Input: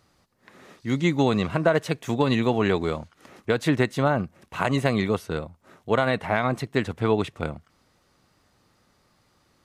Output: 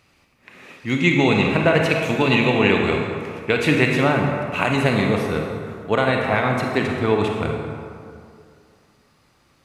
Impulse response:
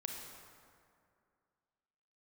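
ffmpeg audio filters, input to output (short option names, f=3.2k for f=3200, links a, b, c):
-filter_complex "[0:a]asetnsamples=n=441:p=0,asendcmd='4.64 equalizer g 4.5',equalizer=f=2.5k:t=o:w=0.5:g=13.5[a];[1:a]atrim=start_sample=2205[b];[a][b]afir=irnorm=-1:irlink=0,volume=5dB"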